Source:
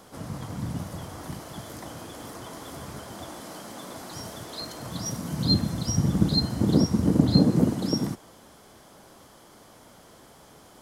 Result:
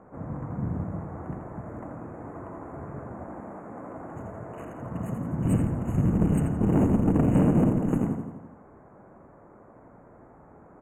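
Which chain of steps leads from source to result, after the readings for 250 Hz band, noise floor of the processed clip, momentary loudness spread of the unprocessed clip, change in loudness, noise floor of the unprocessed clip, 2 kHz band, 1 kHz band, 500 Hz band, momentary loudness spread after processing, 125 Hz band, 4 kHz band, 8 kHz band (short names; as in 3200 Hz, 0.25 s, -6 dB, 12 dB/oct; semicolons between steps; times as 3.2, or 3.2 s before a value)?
0.0 dB, -52 dBFS, 18 LU, -0.5 dB, -52 dBFS, -2.0 dB, +1.5 dB, +1.5 dB, 18 LU, +0.5 dB, under -25 dB, -13.5 dB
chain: Wiener smoothing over 15 samples; feedback echo 84 ms, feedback 58%, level -6 dB; in parallel at -7.5 dB: Schmitt trigger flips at -18.5 dBFS; on the sum: tube stage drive 18 dB, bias 0.4; FFT band-reject 3000–6400 Hz; high shelf 9400 Hz -7.5 dB; mismatched tape noise reduction decoder only; gain +2.5 dB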